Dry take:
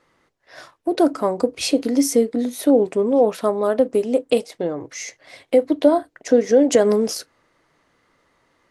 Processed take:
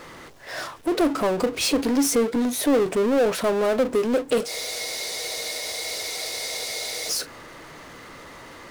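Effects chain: power-law curve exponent 0.5; spectral freeze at 4.5, 2.60 s; gain -9 dB

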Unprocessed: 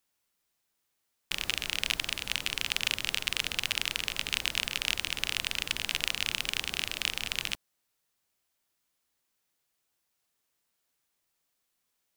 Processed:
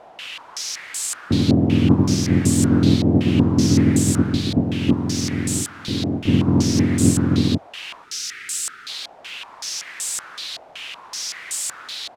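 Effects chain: spectrum mirrored in octaves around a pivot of 880 Hz; 4.24–6.28 level quantiser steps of 11 dB; gate with hold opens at -25 dBFS; doubler 21 ms -3 dB; added noise blue -35 dBFS; 8.04–8.89 spectral gain 460–1200 Hz -19 dB; stepped low-pass 5.3 Hz 710–7900 Hz; gain +8.5 dB

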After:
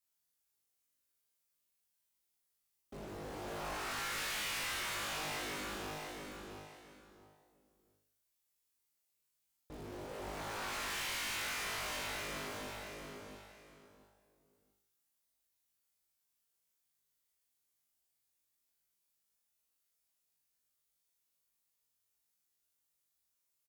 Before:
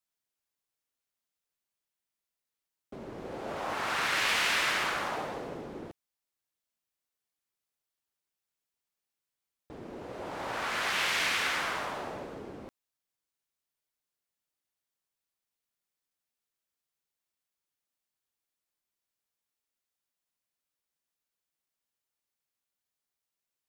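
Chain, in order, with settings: high shelf 5300 Hz +9.5 dB; resonator 51 Hz, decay 0.61 s, harmonics all, mix 100%; on a send: feedback echo 0.68 s, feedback 23%, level -7.5 dB; on the sum: tube stage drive 45 dB, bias 0.45; low shelf 80 Hz +9 dB; in parallel at -10 dB: wrapped overs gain 51 dB; on the sum: gain +7.5 dB

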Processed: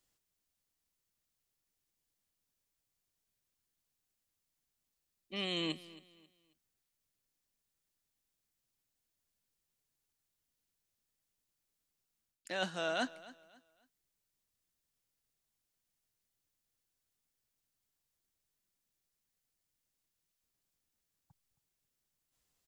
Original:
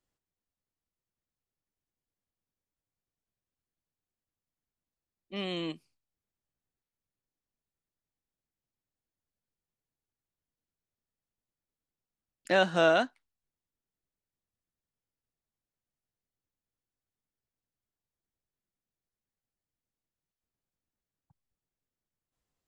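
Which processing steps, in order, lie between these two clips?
high shelf 2300 Hz +10.5 dB; reverse; compressor 12:1, threshold -32 dBFS, peak gain reduction 16 dB; reverse; feedback echo 0.27 s, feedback 31%, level -19 dB

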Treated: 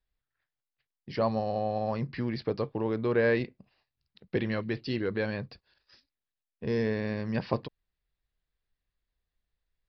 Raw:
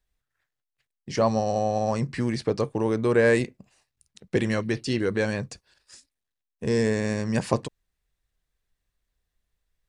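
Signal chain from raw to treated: downsampling 11025 Hz; gain -5.5 dB

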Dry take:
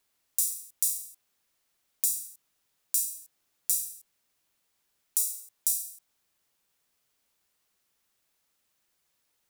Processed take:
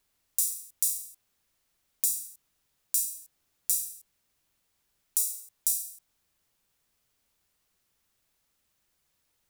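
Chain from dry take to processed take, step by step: low shelf 140 Hz +11 dB

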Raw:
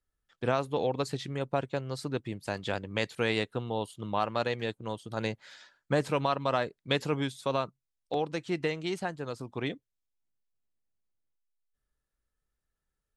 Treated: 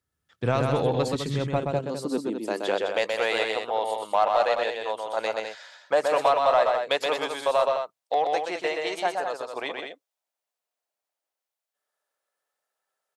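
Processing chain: notches 50/100 Hz; high-pass sweep 92 Hz -> 650 Hz, 1.39–3.05; 1.58–2.51 ten-band EQ 125 Hz -12 dB, 2000 Hz -10 dB, 4000 Hz -3 dB; in parallel at -4 dB: soft clip -24.5 dBFS, distortion -9 dB; on the sum: loudspeakers at several distances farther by 43 m -4 dB, 71 m -7 dB

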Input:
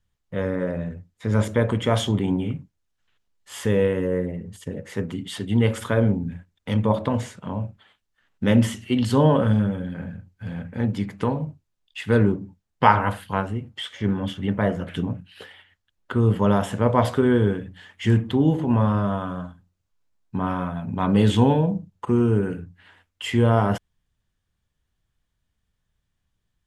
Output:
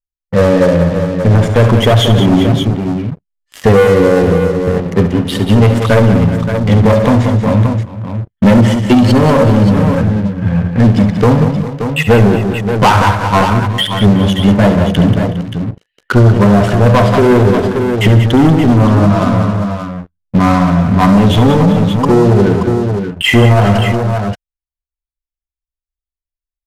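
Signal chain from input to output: per-bin expansion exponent 1.5; Bessel low-pass 4900 Hz; high shelf 3100 Hz -10 dB; compressor 2.5:1, threshold -23 dBFS, peak gain reduction 8 dB; sample leveller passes 5; tapped delay 69/138/185/371/406/577 ms -10.5/-18/-8.5/-19/-16.5/-9 dB; maximiser +9 dB; gain -1 dB; Vorbis 128 kbps 32000 Hz

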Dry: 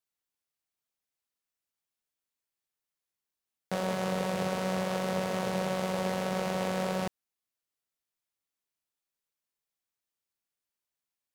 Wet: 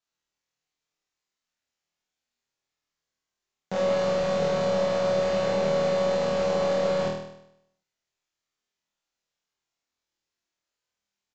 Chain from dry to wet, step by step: overloaded stage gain 25 dB; downsampling 16000 Hz; flutter echo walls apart 4.3 m, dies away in 0.77 s; gain +2.5 dB

